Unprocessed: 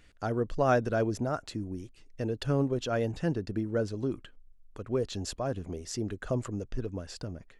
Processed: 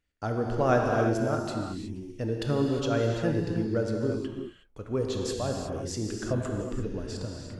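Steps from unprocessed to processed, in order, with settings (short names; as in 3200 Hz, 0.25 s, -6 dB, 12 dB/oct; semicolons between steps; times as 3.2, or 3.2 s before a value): gate with hold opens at -46 dBFS; reverb, pre-delay 3 ms, DRR 0.5 dB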